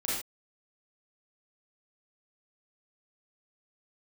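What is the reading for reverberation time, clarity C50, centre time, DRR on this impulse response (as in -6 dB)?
not exponential, -1.0 dB, 60 ms, -7.5 dB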